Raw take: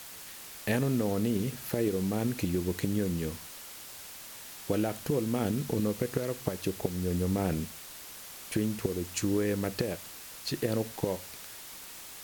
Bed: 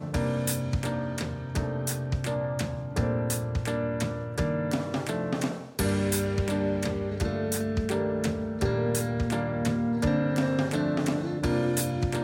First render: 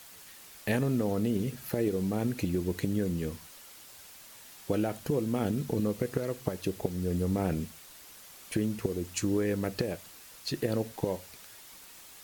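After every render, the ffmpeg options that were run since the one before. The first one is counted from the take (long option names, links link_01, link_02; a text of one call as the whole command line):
ffmpeg -i in.wav -af "afftdn=noise_reduction=6:noise_floor=-46" out.wav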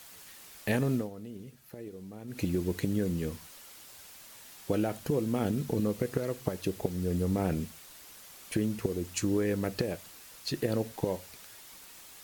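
ffmpeg -i in.wav -filter_complex "[0:a]asplit=3[link_01][link_02][link_03];[link_01]atrim=end=1.1,asetpts=PTS-STARTPTS,afade=type=out:start_time=0.94:duration=0.16:silence=0.188365[link_04];[link_02]atrim=start=1.1:end=2.27,asetpts=PTS-STARTPTS,volume=-14.5dB[link_05];[link_03]atrim=start=2.27,asetpts=PTS-STARTPTS,afade=type=in:duration=0.16:silence=0.188365[link_06];[link_04][link_05][link_06]concat=n=3:v=0:a=1" out.wav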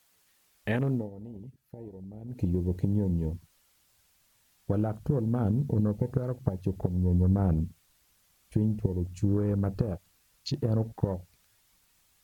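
ffmpeg -i in.wav -af "afwtdn=0.0112,asubboost=boost=3.5:cutoff=170" out.wav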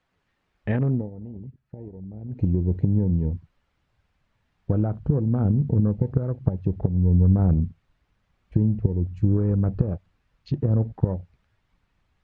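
ffmpeg -i in.wav -af "lowpass=2200,lowshelf=frequency=240:gain=8.5" out.wav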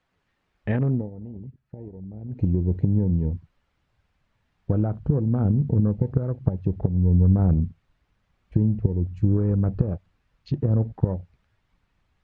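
ffmpeg -i in.wav -af anull out.wav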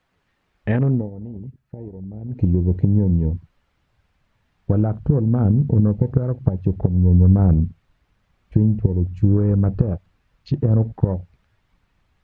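ffmpeg -i in.wav -af "volume=4.5dB,alimiter=limit=-2dB:level=0:latency=1" out.wav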